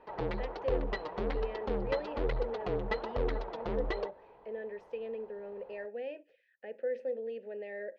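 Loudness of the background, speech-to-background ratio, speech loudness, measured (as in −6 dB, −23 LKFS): −36.5 LKFS, −4.0 dB, −40.5 LKFS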